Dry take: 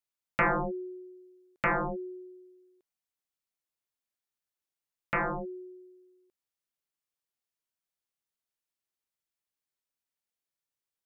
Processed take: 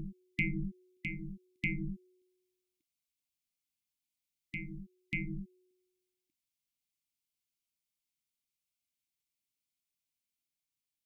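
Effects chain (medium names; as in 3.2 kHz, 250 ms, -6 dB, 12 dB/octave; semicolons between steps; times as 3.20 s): brick-wall FIR band-stop 330–2000 Hz; reverse echo 590 ms -5 dB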